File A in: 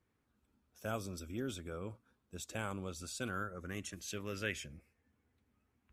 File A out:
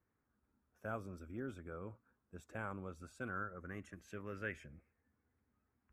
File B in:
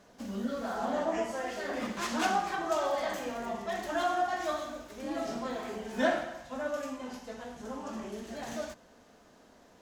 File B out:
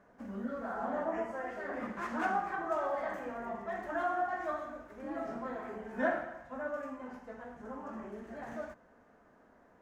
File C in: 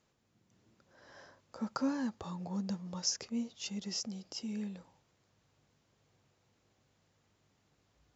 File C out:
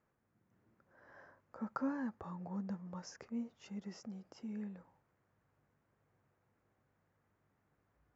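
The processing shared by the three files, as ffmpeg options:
-af "highshelf=f=2.5k:t=q:w=1.5:g=-13.5,volume=-4.5dB"

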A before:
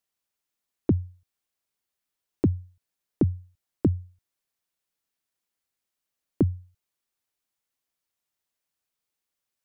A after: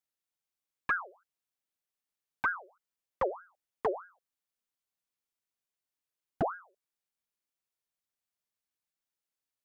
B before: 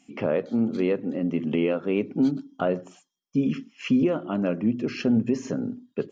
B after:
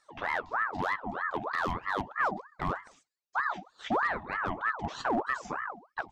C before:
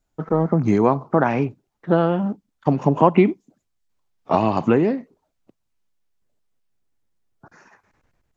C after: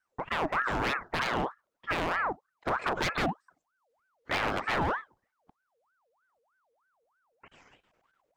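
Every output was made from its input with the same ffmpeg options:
-af "aeval=exprs='0.168*(abs(mod(val(0)/0.168+3,4)-2)-1)':c=same,aeval=exprs='val(0)*sin(2*PI*1000*n/s+1000*0.55/3.2*sin(2*PI*3.2*n/s))':c=same,volume=-4.5dB"

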